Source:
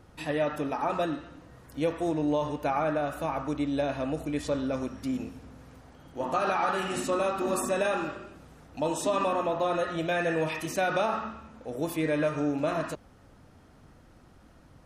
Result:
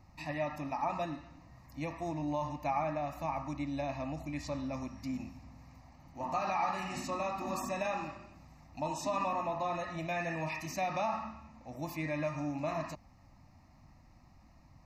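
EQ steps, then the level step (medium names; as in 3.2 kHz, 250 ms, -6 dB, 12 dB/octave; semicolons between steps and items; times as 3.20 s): static phaser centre 2.2 kHz, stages 8; -2.5 dB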